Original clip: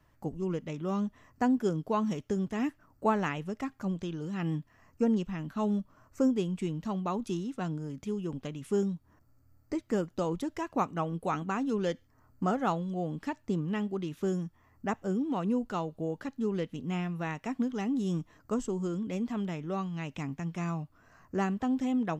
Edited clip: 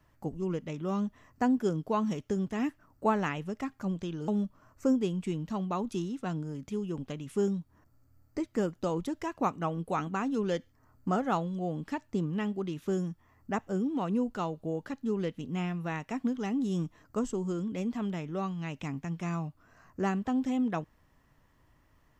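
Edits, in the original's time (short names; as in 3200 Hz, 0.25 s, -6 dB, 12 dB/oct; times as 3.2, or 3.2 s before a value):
4.28–5.63 cut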